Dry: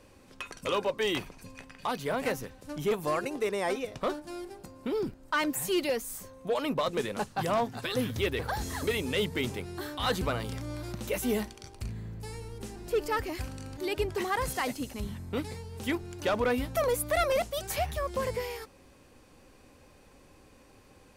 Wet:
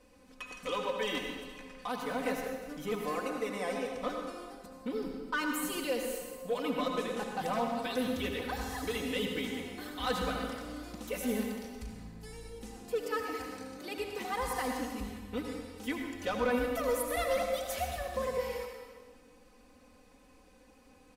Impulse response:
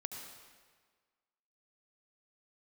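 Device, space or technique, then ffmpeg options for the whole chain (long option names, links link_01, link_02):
stairwell: -filter_complex "[0:a]asettb=1/sr,asplit=3[link_01][link_02][link_03];[link_01]atrim=end=12.764[link_04];[link_02]atrim=start=12.76:end=14.32,asetpts=PTS-STARTPTS,afade=type=in:duration=0.004:curve=qsin,afade=type=out:start_time=1.556:duration=0.004:curve=qsin,highpass=140[link_05];[link_03]atrim=start=14.316[link_06];[link_04][link_05]acrossfade=duration=0.004:curve1=hsin:curve2=qsin[link_07];[link_07][link_06]acrossfade=duration=0.004:curve1=qsin:curve2=hsin,aecho=1:1:4:0.97[link_08];[1:a]atrim=start_sample=2205[link_09];[link_08][link_09]afir=irnorm=-1:irlink=0,volume=-5dB"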